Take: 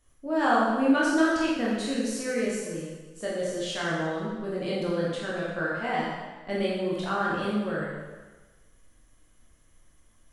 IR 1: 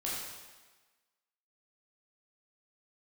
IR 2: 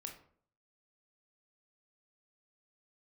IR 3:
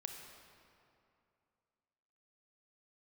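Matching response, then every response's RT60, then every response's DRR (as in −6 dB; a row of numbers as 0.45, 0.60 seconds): 1; 1.3, 0.55, 2.6 seconds; −6.5, 2.5, 3.0 decibels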